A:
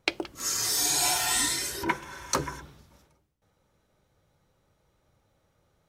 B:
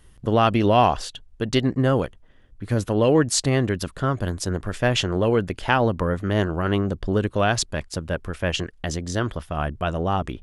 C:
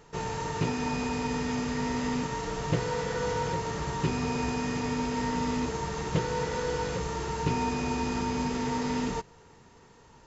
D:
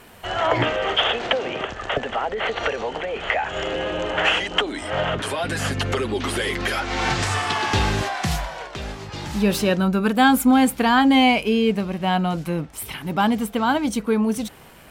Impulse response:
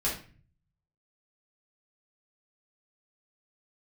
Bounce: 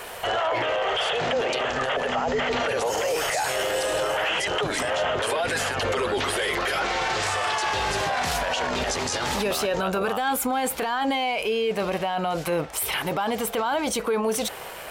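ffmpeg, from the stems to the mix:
-filter_complex "[0:a]adelay=2450,volume=-9dB[a];[1:a]tiltshelf=f=970:g=-6.5,acompressor=threshold=-27dB:ratio=5,volume=1.5dB,asplit=2[b][c];[2:a]adelay=600,volume=-4.5dB[d];[3:a]volume=3dB[e];[c]apad=whole_len=479321[f];[d][f]sidechaincompress=threshold=-40dB:ratio=8:attack=16:release=128[g];[b][e]amix=inputs=2:normalize=0,lowshelf=f=350:t=q:w=1.5:g=-11,acompressor=threshold=-24dB:ratio=2,volume=0dB[h];[a][g][h]amix=inputs=3:normalize=0,acontrast=72,alimiter=limit=-17.5dB:level=0:latency=1:release=14"

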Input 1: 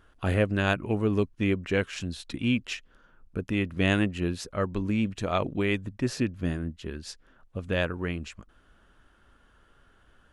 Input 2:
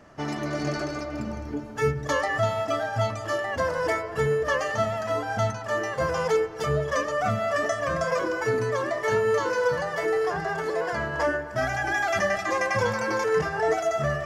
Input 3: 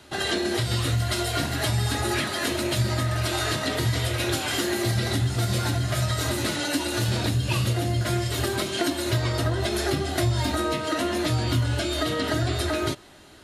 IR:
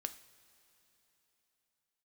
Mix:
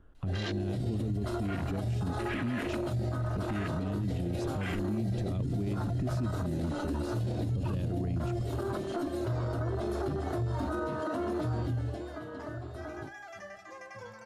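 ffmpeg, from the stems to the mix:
-filter_complex "[0:a]acrossover=split=330|3000[a][b][c];[b]acompressor=threshold=-40dB:ratio=6[d];[a][d][c]amix=inputs=3:normalize=0,tiltshelf=f=970:g=9.5,volume=1dB,asplit=2[e][f];[1:a]adelay=1200,volume=-14.5dB[g];[2:a]afwtdn=0.0398,adelay=150,volume=-3.5dB,afade=t=out:st=11.48:d=0.67:silence=0.266073[h];[f]apad=whole_len=681776[i];[g][i]sidechaincompress=threshold=-43dB:ratio=8:attack=16:release=571[j];[e][j]amix=inputs=2:normalize=0,agate=range=-7dB:threshold=-34dB:ratio=16:detection=peak,acompressor=threshold=-23dB:ratio=6,volume=0dB[k];[h][k]amix=inputs=2:normalize=0,alimiter=level_in=1dB:limit=-24dB:level=0:latency=1:release=28,volume=-1dB"

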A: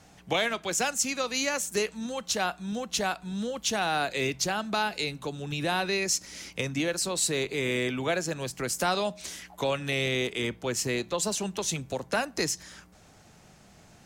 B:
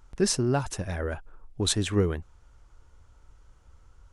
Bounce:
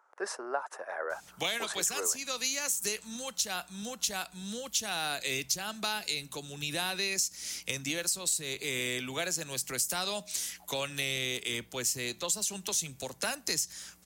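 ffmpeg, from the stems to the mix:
-filter_complex "[0:a]crystalizer=i=5.5:c=0,adelay=1100,volume=-8.5dB[a];[1:a]highpass=f=550:w=0.5412,highpass=f=550:w=1.3066,highshelf=f=2.1k:t=q:w=1.5:g=-12.5,volume=0.5dB[b];[a][b]amix=inputs=2:normalize=0,acrossover=split=180[c][d];[d]acompressor=threshold=-27dB:ratio=10[e];[c][e]amix=inputs=2:normalize=0"

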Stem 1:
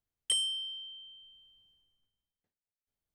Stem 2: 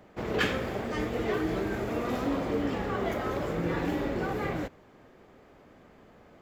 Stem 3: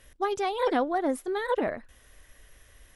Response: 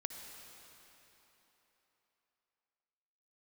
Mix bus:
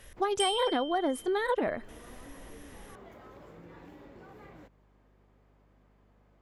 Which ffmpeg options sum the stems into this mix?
-filter_complex "[0:a]adelay=100,volume=-2.5dB[a];[1:a]acompressor=threshold=-36dB:ratio=3,equalizer=f=980:t=o:w=0.33:g=4.5,aeval=exprs='val(0)+0.00316*(sin(2*PI*50*n/s)+sin(2*PI*2*50*n/s)/2+sin(2*PI*3*50*n/s)/3+sin(2*PI*4*50*n/s)/4+sin(2*PI*5*50*n/s)/5)':c=same,volume=-14dB[b];[2:a]acompressor=threshold=-28dB:ratio=6,volume=3dB,asplit=2[c][d];[d]apad=whole_len=282752[e];[b][e]sidechaincompress=threshold=-42dB:ratio=8:attack=16:release=127[f];[a][f][c]amix=inputs=3:normalize=0"

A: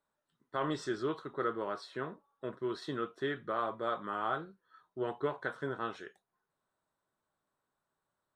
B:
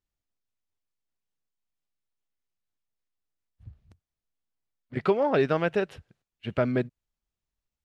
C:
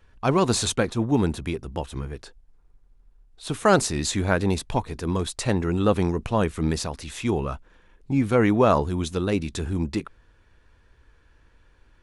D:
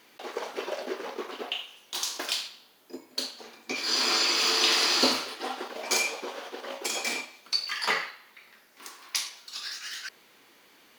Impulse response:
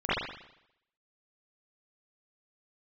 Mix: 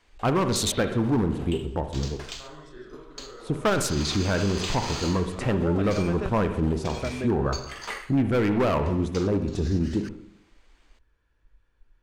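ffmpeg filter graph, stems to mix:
-filter_complex "[0:a]acompressor=threshold=-36dB:ratio=6,adelay=1850,volume=-12dB,asplit=2[a][b];[b]volume=-6.5dB[c];[1:a]adelay=450,volume=-7dB[d];[2:a]afwtdn=0.0224,volume=17.5dB,asoftclip=hard,volume=-17.5dB,volume=2.5dB,asplit=3[e][f][g];[f]volume=-21dB[h];[3:a]acrusher=samples=4:mix=1:aa=0.000001,lowpass=9k,highshelf=f=6k:g=-4.5,volume=-7dB[i];[g]apad=whole_len=449965[j];[a][j]sidechaingate=range=-33dB:threshold=-52dB:ratio=16:detection=peak[k];[4:a]atrim=start_sample=2205[l];[c][h]amix=inputs=2:normalize=0[m];[m][l]afir=irnorm=-1:irlink=0[n];[k][d][e][i][n]amix=inputs=5:normalize=0,alimiter=limit=-16dB:level=0:latency=1:release=108"

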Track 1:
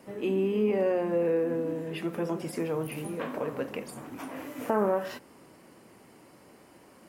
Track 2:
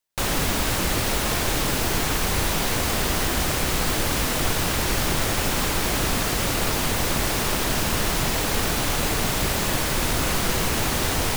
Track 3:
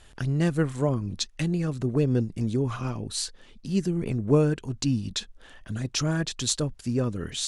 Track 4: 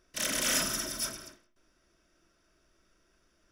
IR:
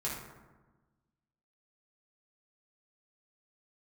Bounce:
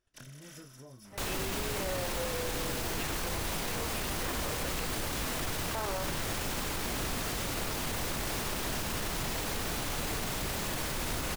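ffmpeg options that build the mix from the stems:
-filter_complex "[0:a]highpass=760,adelay=1050,volume=-1.5dB[a];[1:a]adelay=1000,volume=-10dB[b];[2:a]flanger=delay=20:depth=6.8:speed=0.27,acompressor=threshold=-37dB:ratio=12,agate=range=-19dB:threshold=-51dB:ratio=16:detection=peak,volume=-11dB,asplit=2[c][d];[3:a]volume=-15.5dB[e];[d]apad=whole_len=155187[f];[e][f]sidechaincompress=threshold=-56dB:ratio=8:attack=16:release=848[g];[a][b][c][g]amix=inputs=4:normalize=0,alimiter=level_in=0.5dB:limit=-24dB:level=0:latency=1:release=13,volume=-0.5dB"

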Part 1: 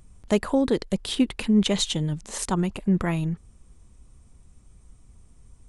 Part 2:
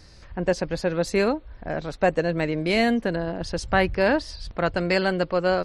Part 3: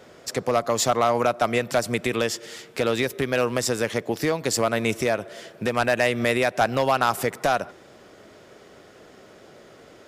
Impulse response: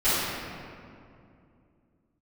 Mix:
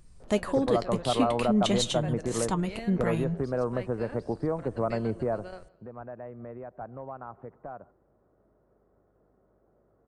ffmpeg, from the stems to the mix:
-filter_complex "[0:a]flanger=delay=5.8:depth=7.8:regen=64:speed=0.41:shape=triangular,volume=0.5dB,asplit=2[a][b];[1:a]volume=-20dB,asplit=2[c][d];[d]volume=-23dB[e];[2:a]lowpass=f=1.2k:w=0.5412,lowpass=f=1.2k:w=1.3066,equalizer=f=62:t=o:w=2.5:g=6.5,aeval=exprs='val(0)+0.002*(sin(2*PI*50*n/s)+sin(2*PI*2*50*n/s)/2+sin(2*PI*3*50*n/s)/3+sin(2*PI*4*50*n/s)/4+sin(2*PI*5*50*n/s)/5)':c=same,adelay=200,volume=-6dB,afade=t=out:st=5.4:d=0.23:silence=0.223872[f];[b]apad=whole_len=249043[g];[c][g]sidechaingate=range=-7dB:threshold=-52dB:ratio=16:detection=peak[h];[e]aecho=0:1:159|318|477|636:1|0.28|0.0784|0.022[i];[a][h][f][i]amix=inputs=4:normalize=0"

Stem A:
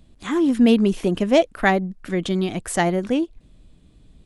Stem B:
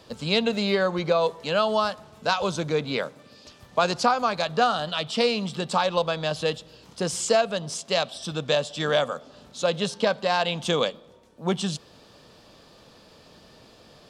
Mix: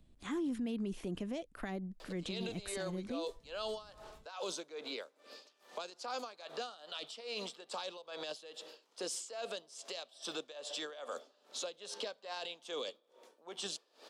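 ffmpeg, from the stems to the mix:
-filter_complex "[0:a]alimiter=limit=-15dB:level=0:latency=1:release=199,volume=-12.5dB[a];[1:a]highpass=f=350:w=0.5412,highpass=f=350:w=1.3066,alimiter=limit=-18dB:level=0:latency=1:release=34,aeval=exprs='val(0)*pow(10,-22*(0.5-0.5*cos(2*PI*2.4*n/s))/20)':c=same,adelay=2000,volume=0dB[b];[a][b]amix=inputs=2:normalize=0,acrossover=split=370|3000[c][d][e];[d]acompressor=threshold=-43dB:ratio=4[f];[c][f][e]amix=inputs=3:normalize=0,alimiter=level_in=7dB:limit=-24dB:level=0:latency=1:release=16,volume=-7dB"

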